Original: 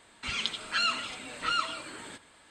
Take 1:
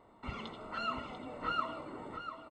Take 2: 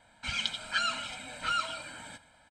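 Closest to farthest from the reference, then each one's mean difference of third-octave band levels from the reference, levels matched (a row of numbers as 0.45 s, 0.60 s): 2, 1; 2.5 dB, 9.5 dB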